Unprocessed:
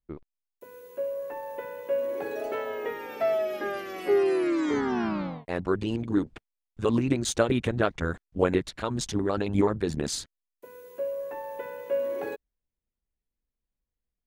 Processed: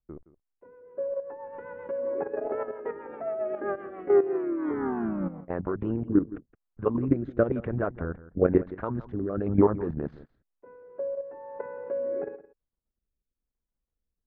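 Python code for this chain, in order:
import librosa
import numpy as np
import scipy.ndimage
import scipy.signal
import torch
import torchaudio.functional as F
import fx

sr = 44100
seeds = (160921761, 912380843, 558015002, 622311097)

p1 = fx.envelope_flatten(x, sr, power=0.6, at=(1.44, 1.9), fade=0.02)
p2 = scipy.signal.sosfilt(scipy.signal.butter(4, 1500.0, 'lowpass', fs=sr, output='sos'), p1)
p3 = fx.level_steps(p2, sr, step_db=11)
p4 = fx.rotary_switch(p3, sr, hz=7.5, then_hz=1.0, switch_at_s=3.81)
p5 = p4 + fx.echo_single(p4, sr, ms=168, db=-17.0, dry=0)
y = p5 * 10.0 ** (5.5 / 20.0)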